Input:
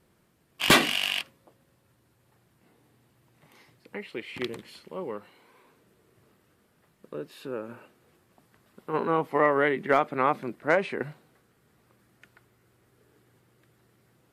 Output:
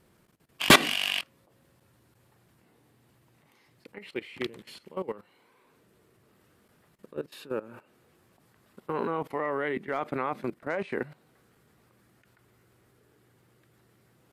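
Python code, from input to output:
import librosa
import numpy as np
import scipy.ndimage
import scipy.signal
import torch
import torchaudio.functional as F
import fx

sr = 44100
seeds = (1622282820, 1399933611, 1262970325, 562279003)

y = fx.level_steps(x, sr, step_db=17)
y = y * 10.0 ** (4.0 / 20.0)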